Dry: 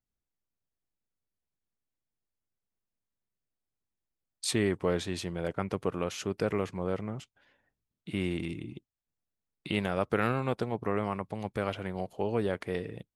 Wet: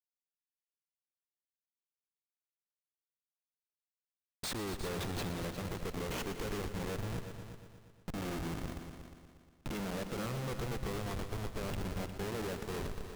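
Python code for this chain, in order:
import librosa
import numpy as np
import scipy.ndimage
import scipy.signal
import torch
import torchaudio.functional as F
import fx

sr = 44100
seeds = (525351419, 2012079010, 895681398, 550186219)

y = fx.schmitt(x, sr, flips_db=-36.5)
y = fx.echo_heads(y, sr, ms=119, heads='all three', feedback_pct=44, wet_db=-13)
y = F.gain(torch.from_numpy(y), -3.0).numpy()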